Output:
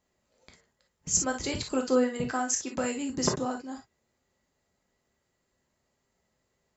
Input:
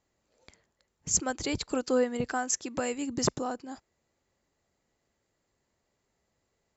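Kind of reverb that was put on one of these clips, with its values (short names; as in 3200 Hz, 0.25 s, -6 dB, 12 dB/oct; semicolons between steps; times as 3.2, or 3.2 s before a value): non-linear reverb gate 80 ms flat, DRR 1.5 dB; gain -1 dB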